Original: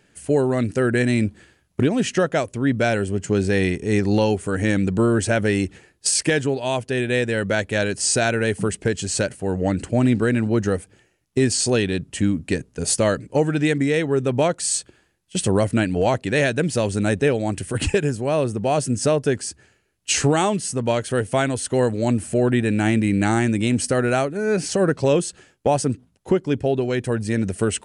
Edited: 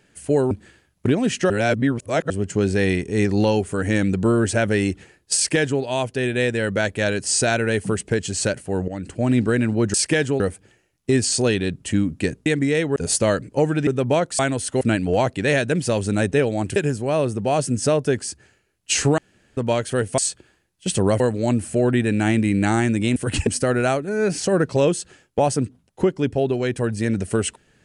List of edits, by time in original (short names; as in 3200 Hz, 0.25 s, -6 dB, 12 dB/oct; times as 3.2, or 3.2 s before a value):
0.51–1.25 cut
2.24–3.04 reverse
6.1–6.56 copy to 10.68
9.62–10.13 fade in, from -13 dB
13.65–14.15 move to 12.74
14.67–15.69 swap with 21.37–21.79
17.64–17.95 move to 23.75
20.37–20.76 room tone